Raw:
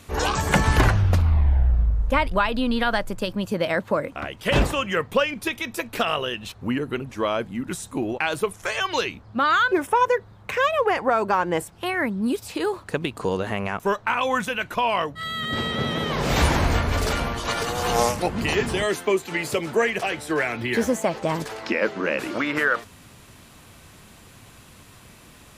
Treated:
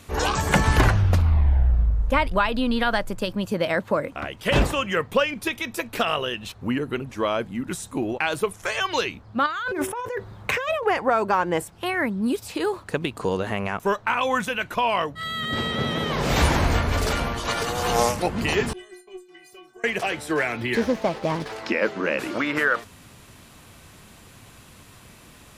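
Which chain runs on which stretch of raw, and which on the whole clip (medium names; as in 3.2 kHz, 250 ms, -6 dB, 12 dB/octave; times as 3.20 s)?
9.46–10.83 s: de-hum 189.5 Hz, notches 4 + compressor with a negative ratio -27 dBFS
18.73–19.84 s: gate -37 dBFS, range -10 dB + inharmonic resonator 360 Hz, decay 0.38 s, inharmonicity 0.008 + valve stage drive 21 dB, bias 0.7
20.75–21.53 s: CVSD coder 32 kbps + sliding maximum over 3 samples
whole clip: none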